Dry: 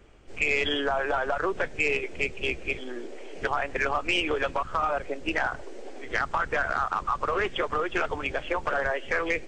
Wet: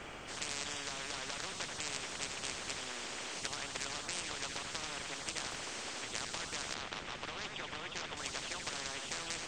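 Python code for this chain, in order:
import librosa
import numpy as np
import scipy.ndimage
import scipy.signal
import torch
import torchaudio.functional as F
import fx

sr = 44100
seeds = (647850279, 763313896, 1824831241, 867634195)

y = fx.lowpass(x, sr, hz=1900.0, slope=6, at=(6.74, 8.17))
y = y + 10.0 ** (-17.5 / 20.0) * np.pad(y, (int(84 * sr / 1000.0), 0))[:len(y)]
y = fx.spectral_comp(y, sr, ratio=10.0)
y = y * 10.0 ** (-6.0 / 20.0)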